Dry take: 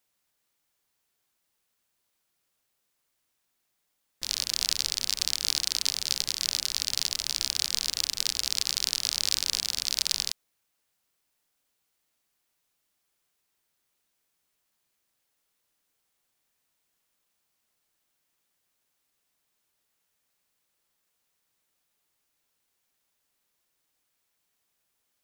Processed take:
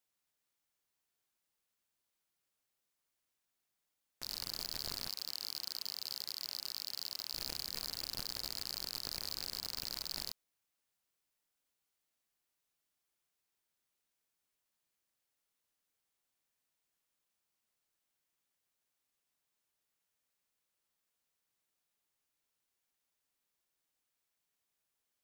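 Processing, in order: 5.08–7.34 HPF 540 Hz 6 dB/oct; sample leveller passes 5; overloaded stage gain 30 dB; gain +1 dB

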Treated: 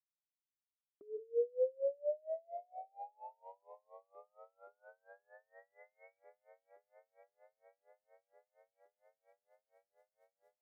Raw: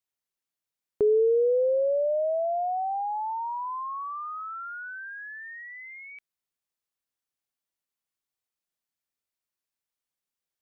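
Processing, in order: treble ducked by the level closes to 890 Hz, closed at -26 dBFS; gate -28 dBFS, range -42 dB; resonator 84 Hz, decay 2 s, harmonics all, mix 40%; dynamic EQ 860 Hz, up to -5 dB, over -44 dBFS, Q 0.74; resonator 330 Hz, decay 0.69 s, mix 40%; on a send: thin delay 0.523 s, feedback 67%, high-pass 1500 Hz, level -16.5 dB; on the sum: reverse; upward compressor, threshold -43 dBFS; reverse; notch 440 Hz, Q 12; dB-linear tremolo 4.3 Hz, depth 33 dB; gain +6.5 dB

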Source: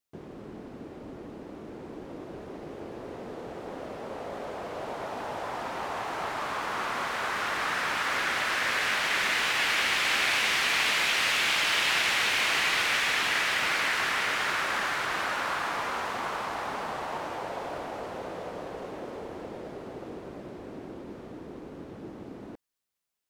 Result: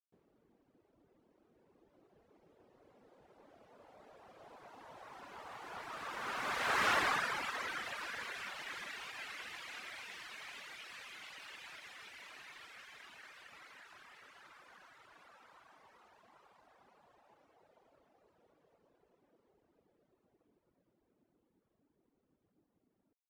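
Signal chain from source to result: Doppler pass-by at 6.93, 26 m/s, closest 6.6 m; reverb removal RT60 1.6 s; gain +2 dB

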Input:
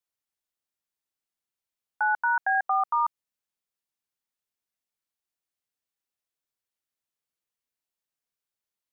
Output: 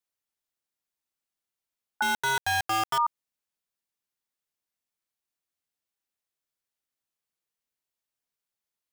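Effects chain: 2.02–2.98 companded quantiser 2-bit

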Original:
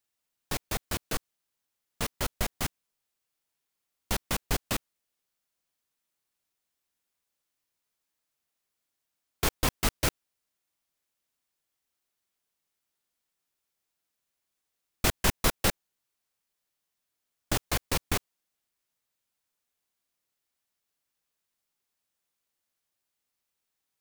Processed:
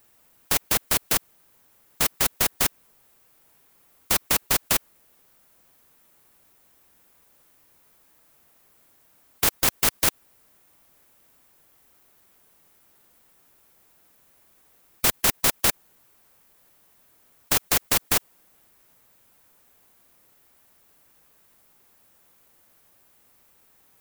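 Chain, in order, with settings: bell 4800 Hz -10.5 dB 2.5 oct; spectral compressor 4:1; gain +6 dB

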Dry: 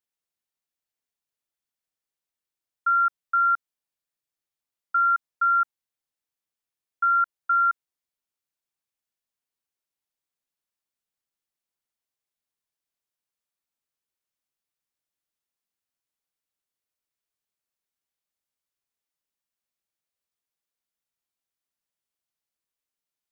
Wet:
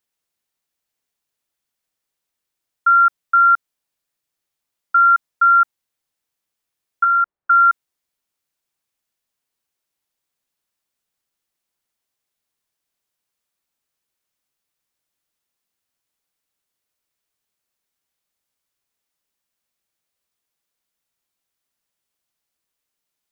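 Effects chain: 7.04–7.5 LPF 1300 Hz 12 dB/oct; gain +8.5 dB

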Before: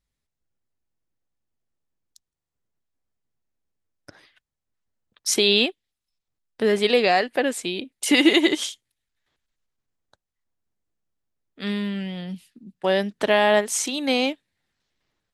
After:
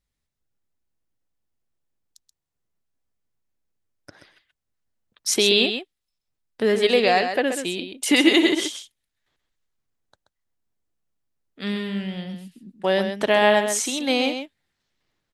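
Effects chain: echo 0.13 s -8 dB

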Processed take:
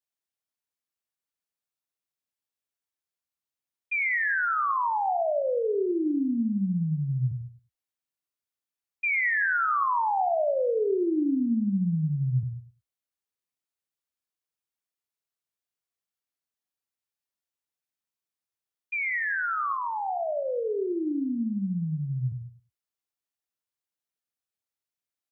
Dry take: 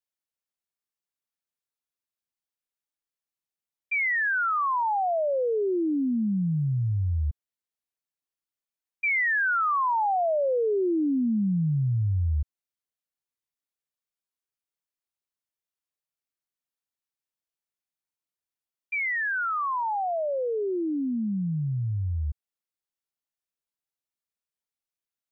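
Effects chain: 19.75–20.56 dynamic EQ 1300 Hz, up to -4 dB, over -42 dBFS, Q 1.1; frequency shift +48 Hz; feedback echo 0.1 s, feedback 15%, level -11 dB; non-linear reverb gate 0.19 s flat, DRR 9.5 dB; gain -1.5 dB

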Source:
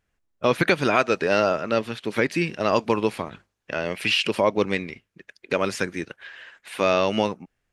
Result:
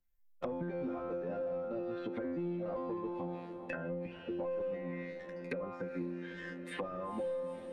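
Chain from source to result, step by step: per-bin expansion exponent 1.5; resonator bank F3 fifth, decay 0.69 s; limiter -36 dBFS, peak gain reduction 10.5 dB; sample leveller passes 2; compressor 3:1, threshold -53 dBFS, peak gain reduction 10.5 dB; treble ducked by the level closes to 640 Hz, closed at -50 dBFS; diffused feedback echo 0.478 s, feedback 61%, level -15 dB; three-band squash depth 70%; gain +15.5 dB

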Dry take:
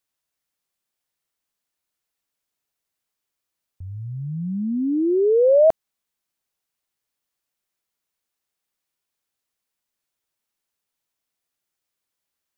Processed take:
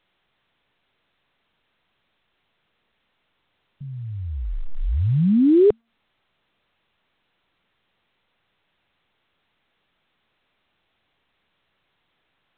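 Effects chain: frequency shift -230 Hz; A-law 64 kbps 8000 Hz

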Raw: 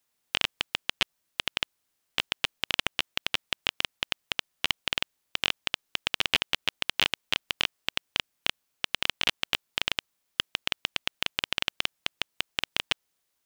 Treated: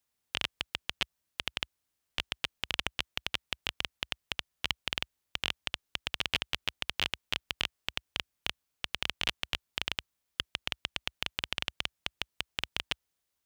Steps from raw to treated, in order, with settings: bell 62 Hz +10 dB 1.5 oct; gain -5.5 dB

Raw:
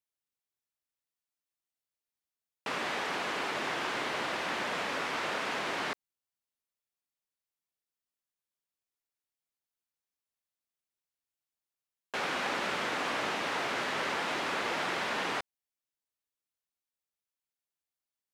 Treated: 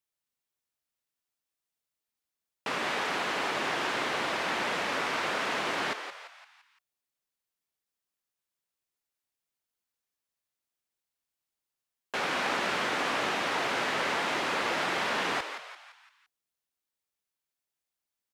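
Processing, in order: frequency-shifting echo 0.171 s, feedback 46%, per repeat +140 Hz, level -9 dB; gain +2.5 dB

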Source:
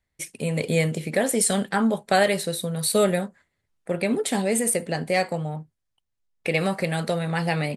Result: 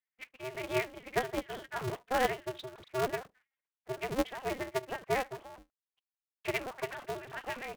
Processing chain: sine-wave speech; low shelf 380 Hz -11 dB; polarity switched at an audio rate 130 Hz; gain -8.5 dB

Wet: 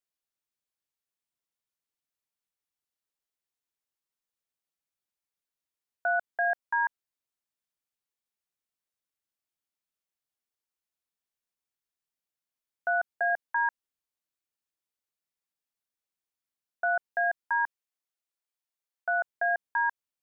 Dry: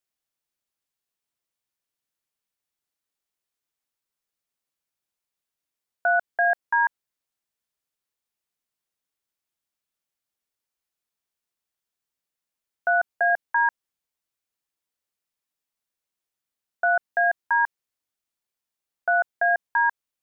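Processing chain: 17.58–19.2 HPF 300 Hz -> 520 Hz; gain -6 dB

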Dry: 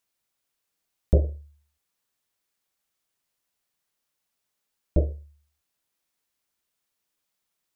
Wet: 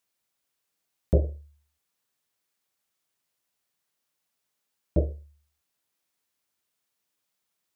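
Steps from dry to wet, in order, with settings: HPF 70 Hz

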